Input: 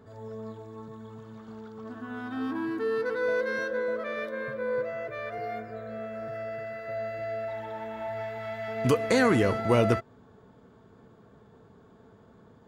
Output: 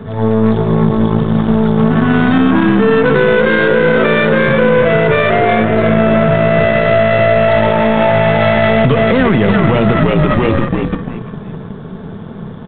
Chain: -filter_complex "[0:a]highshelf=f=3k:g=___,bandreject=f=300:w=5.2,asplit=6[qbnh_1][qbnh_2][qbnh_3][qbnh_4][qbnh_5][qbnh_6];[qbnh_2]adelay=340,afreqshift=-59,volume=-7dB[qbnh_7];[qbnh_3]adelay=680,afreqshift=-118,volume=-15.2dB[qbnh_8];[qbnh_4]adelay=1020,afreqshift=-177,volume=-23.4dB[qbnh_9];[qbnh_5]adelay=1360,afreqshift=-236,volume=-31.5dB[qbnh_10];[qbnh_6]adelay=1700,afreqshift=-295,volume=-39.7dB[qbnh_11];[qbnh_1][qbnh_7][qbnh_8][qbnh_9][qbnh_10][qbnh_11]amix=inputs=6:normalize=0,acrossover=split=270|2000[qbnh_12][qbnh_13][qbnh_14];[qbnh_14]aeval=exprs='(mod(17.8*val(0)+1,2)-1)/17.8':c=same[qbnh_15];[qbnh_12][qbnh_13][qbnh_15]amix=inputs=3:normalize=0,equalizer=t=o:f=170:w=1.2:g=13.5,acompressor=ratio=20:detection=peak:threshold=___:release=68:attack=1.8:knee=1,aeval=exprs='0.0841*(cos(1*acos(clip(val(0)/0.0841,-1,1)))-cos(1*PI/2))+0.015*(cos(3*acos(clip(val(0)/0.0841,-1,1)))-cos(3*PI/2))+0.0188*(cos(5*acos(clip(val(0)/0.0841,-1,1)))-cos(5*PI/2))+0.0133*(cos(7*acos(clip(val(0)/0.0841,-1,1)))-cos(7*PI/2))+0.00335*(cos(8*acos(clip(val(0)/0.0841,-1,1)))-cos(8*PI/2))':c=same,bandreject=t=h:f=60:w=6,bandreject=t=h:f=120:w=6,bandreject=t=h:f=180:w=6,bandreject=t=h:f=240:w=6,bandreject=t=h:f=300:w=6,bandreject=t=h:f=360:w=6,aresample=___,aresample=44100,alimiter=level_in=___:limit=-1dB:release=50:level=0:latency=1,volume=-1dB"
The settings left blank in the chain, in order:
9.5, -29dB, 8000, 27dB